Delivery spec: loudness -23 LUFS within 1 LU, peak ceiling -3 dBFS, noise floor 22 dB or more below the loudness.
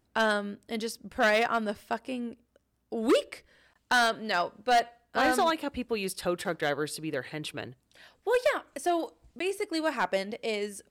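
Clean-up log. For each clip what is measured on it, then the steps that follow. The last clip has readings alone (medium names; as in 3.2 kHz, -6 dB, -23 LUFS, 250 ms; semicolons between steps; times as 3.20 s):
clipped samples 0.8%; clipping level -18.5 dBFS; dropouts 1; longest dropout 14 ms; loudness -29.5 LUFS; peak level -18.5 dBFS; loudness target -23.0 LUFS
-> clip repair -18.5 dBFS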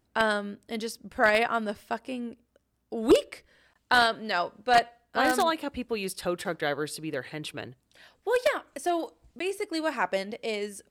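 clipped samples 0.0%; dropouts 1; longest dropout 14 ms
-> interpolate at 9.39 s, 14 ms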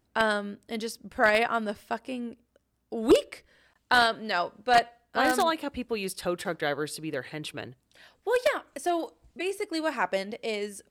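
dropouts 0; loudness -28.0 LUFS; peak level -9.5 dBFS; loudness target -23.0 LUFS
-> trim +5 dB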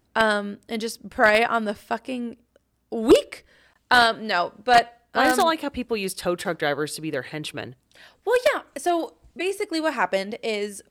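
loudness -23.0 LUFS; peak level -4.5 dBFS; noise floor -69 dBFS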